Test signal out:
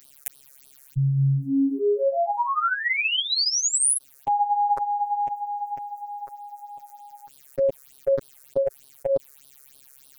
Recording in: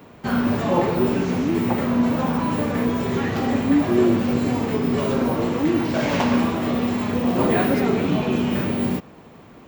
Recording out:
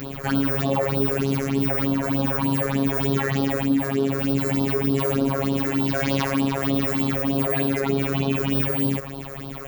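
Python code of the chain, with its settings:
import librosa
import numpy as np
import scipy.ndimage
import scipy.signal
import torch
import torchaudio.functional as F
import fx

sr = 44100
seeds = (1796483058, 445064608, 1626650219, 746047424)

y = fx.high_shelf(x, sr, hz=4600.0, db=8.5)
y = fx.rider(y, sr, range_db=3, speed_s=0.5)
y = fx.phaser_stages(y, sr, stages=6, low_hz=210.0, high_hz=2100.0, hz=3.3, feedback_pct=25)
y = fx.robotise(y, sr, hz=137.0)
y = fx.env_flatten(y, sr, amount_pct=50)
y = y * 10.0 ** (-2.0 / 20.0)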